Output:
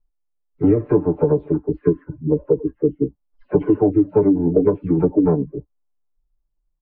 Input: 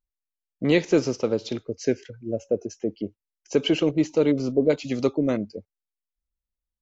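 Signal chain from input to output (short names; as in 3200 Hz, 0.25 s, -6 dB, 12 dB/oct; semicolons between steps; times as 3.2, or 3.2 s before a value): spectral delay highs early, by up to 0.134 s; bell 200 Hz -2 dB 1 oct; formant-preserving pitch shift -7 st; LPF 1100 Hz 24 dB/oct; low shelf 120 Hz +7 dB; comb 6.8 ms, depth 89%; compressor, threshold -20 dBFS, peak gain reduction 9 dB; gain +8.5 dB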